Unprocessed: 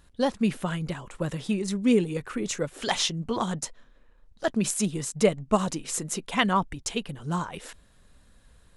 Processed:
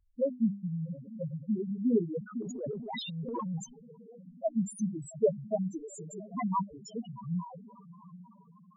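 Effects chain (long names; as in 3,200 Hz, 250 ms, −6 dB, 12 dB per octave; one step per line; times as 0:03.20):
low-shelf EQ 85 Hz −10.5 dB
mains-hum notches 50/100/150/200/250/300 Hz
feedback delay with all-pass diffusion 705 ms, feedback 55%, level −14.5 dB
spectral peaks only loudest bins 2
0:02.42–0:03.64: transient designer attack −8 dB, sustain +10 dB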